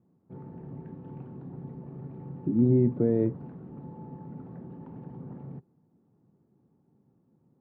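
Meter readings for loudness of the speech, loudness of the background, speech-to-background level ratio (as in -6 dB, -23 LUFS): -25.0 LUFS, -43.5 LUFS, 18.5 dB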